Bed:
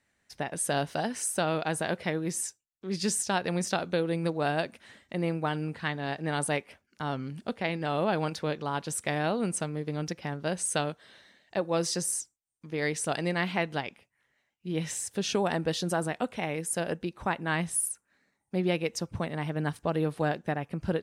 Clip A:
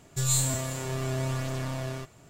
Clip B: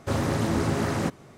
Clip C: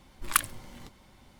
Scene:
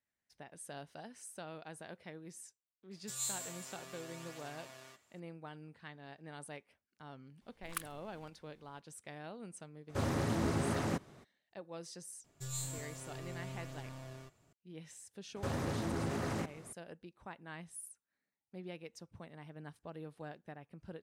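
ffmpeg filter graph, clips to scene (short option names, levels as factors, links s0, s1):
-filter_complex "[1:a]asplit=2[s0][s1];[2:a]asplit=2[s2][s3];[0:a]volume=0.112[s4];[s0]highpass=f=1200:p=1[s5];[s3]acompressor=threshold=0.0447:ratio=6:attack=3.2:release=140:knee=1:detection=peak[s6];[s5]atrim=end=2.29,asetpts=PTS-STARTPTS,volume=0.266,afade=t=in:d=0.004:c=hsin,afade=t=out:st=2.286:d=0.004:c=hsin,adelay=2910[s7];[3:a]atrim=end=1.39,asetpts=PTS-STARTPTS,volume=0.15,afade=t=in:d=0.004:c=hsin,afade=t=out:st=1.386:d=0.004:c=hsin,adelay=7410[s8];[s2]atrim=end=1.37,asetpts=PTS-STARTPTS,volume=0.376,afade=t=in:d=0.02,afade=t=out:st=1.35:d=0.02,adelay=9880[s9];[s1]atrim=end=2.29,asetpts=PTS-STARTPTS,volume=0.168,afade=t=in:d=0.004:c=hsin,afade=t=out:st=2.286:d=0.004:c=hsin,adelay=12240[s10];[s6]atrim=end=1.37,asetpts=PTS-STARTPTS,volume=0.531,afade=t=in:d=0.004:c=hsin,afade=t=out:st=1.366:d=0.004:c=hsin,adelay=15360[s11];[s4][s7][s8][s9][s10][s11]amix=inputs=6:normalize=0"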